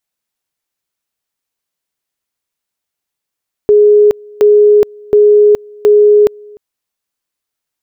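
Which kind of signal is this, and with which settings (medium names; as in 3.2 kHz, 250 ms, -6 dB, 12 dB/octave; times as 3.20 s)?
two-level tone 417 Hz -3 dBFS, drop 28 dB, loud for 0.42 s, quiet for 0.30 s, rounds 4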